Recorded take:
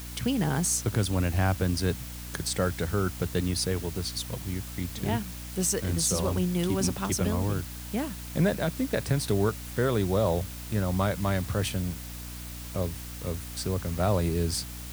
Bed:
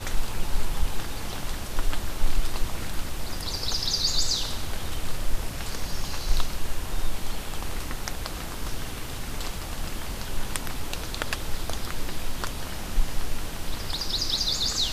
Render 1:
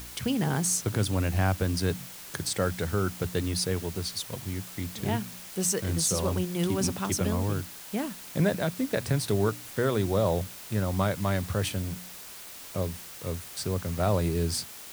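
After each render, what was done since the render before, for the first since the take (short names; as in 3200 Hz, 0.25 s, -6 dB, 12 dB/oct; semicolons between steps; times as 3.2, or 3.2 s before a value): de-hum 60 Hz, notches 5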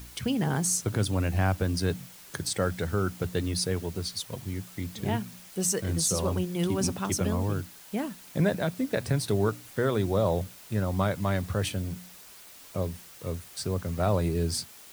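denoiser 6 dB, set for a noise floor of -44 dBFS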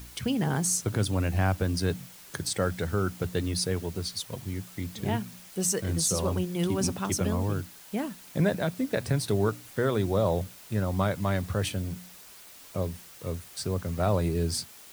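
nothing audible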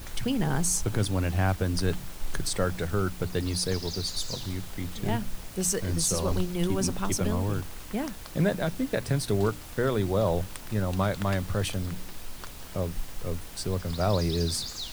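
add bed -11 dB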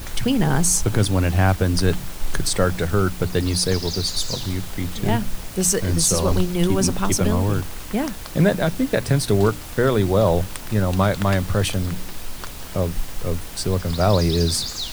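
gain +8 dB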